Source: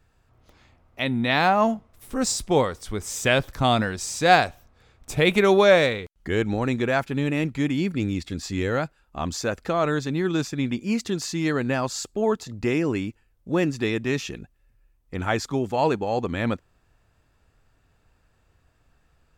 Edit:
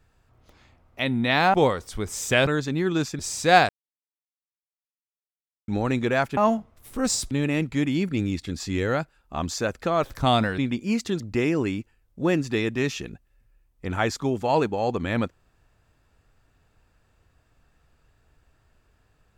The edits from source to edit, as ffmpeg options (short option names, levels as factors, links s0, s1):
-filter_complex "[0:a]asplit=11[s0][s1][s2][s3][s4][s5][s6][s7][s8][s9][s10];[s0]atrim=end=1.542[s11];[s1]atrim=start=2.478:end=3.412[s12];[s2]atrim=start=9.858:end=10.582[s13];[s3]atrim=start=3.958:end=4.46,asetpts=PTS-STARTPTS,afade=t=out:st=0.498:d=0.004:c=hsin[s14];[s4]atrim=start=4.46:end=6.45,asetpts=PTS-STARTPTS,volume=0[s15];[s5]atrim=start=6.45:end=7.142,asetpts=PTS-STARTPTS,afade=t=in:d=0.004:c=hsin[s16];[s6]atrim=start=1.538:end=2.482[s17];[s7]atrim=start=7.138:end=9.862[s18];[s8]atrim=start=3.408:end=3.962[s19];[s9]atrim=start=10.578:end=11.202[s20];[s10]atrim=start=12.488[s21];[s11][s12]acrossfade=d=0.004:c1=hsin:c2=hsin[s22];[s22][s13]acrossfade=d=0.004:c1=hsin:c2=hsin[s23];[s14][s15][s16]concat=n=3:v=0:a=1[s24];[s23][s24]acrossfade=d=0.004:c1=hsin:c2=hsin[s25];[s25][s17]acrossfade=d=0.004:c1=hsin:c2=hsin[s26];[s26][s18]acrossfade=d=0.004:c1=hsin:c2=hsin[s27];[s27][s19]acrossfade=d=0.004:c1=hsin:c2=hsin[s28];[s28][s20]acrossfade=d=0.004:c1=hsin:c2=hsin[s29];[s29][s21]acrossfade=d=0.004:c1=hsin:c2=hsin"